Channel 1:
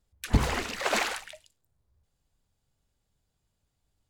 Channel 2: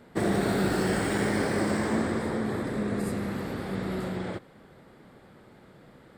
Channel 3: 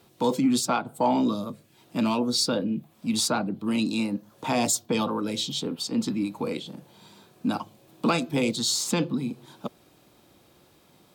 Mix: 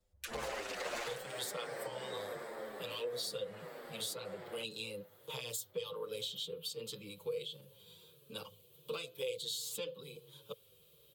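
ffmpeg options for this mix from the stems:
-filter_complex "[0:a]volume=24dB,asoftclip=hard,volume=-24dB,volume=-0.5dB[a];[1:a]highpass=480,adelay=250,volume=-9.5dB[b];[2:a]firequalizer=gain_entry='entry(160,0);entry(250,-26);entry(450,3);entry(680,-20);entry(1100,-8);entry(1900,-10);entry(3100,7);entry(5300,-5);entry(13000,10)':delay=0.05:min_phase=1,adelay=850,volume=-4.5dB[c];[a][b][c]amix=inputs=3:normalize=0,equalizer=f=530:w=3.1:g=9.5,acrossover=split=170|420[d][e][f];[d]acompressor=threshold=-57dB:ratio=4[g];[e]acompressor=threshold=-53dB:ratio=4[h];[f]acompressor=threshold=-36dB:ratio=4[i];[g][h][i]amix=inputs=3:normalize=0,asplit=2[j][k];[k]adelay=7.6,afreqshift=-1.4[l];[j][l]amix=inputs=2:normalize=1"

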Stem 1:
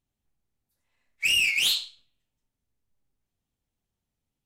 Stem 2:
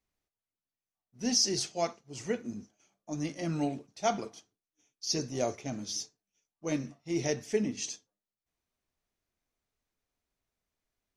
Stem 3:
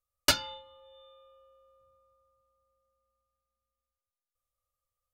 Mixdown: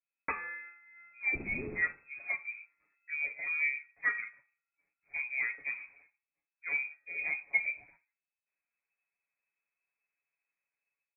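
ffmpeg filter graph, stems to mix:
-filter_complex "[0:a]adelay=100,volume=-19dB,asplit=2[a][b];[b]volume=-3.5dB[c];[1:a]lowpass=f=1.9k:p=1,aecho=1:1:7.4:0.78,volume=-14dB[d];[2:a]agate=range=-15dB:threshold=-54dB:ratio=16:detection=peak,alimiter=limit=-18.5dB:level=0:latency=1:release=85,volume=0dB[e];[c]aecho=0:1:63|126|189|252|315:1|0.38|0.144|0.0549|0.0209[f];[a][d][e][f]amix=inputs=4:normalize=0,bandreject=f=348.9:t=h:w=4,bandreject=f=697.8:t=h:w=4,bandreject=f=1.0467k:t=h:w=4,bandreject=f=1.3956k:t=h:w=4,bandreject=f=1.7445k:t=h:w=4,bandreject=f=2.0934k:t=h:w=4,dynaudnorm=f=420:g=3:m=10dB,lowpass=f=2.2k:t=q:w=0.5098,lowpass=f=2.2k:t=q:w=0.6013,lowpass=f=2.2k:t=q:w=0.9,lowpass=f=2.2k:t=q:w=2.563,afreqshift=-2600"

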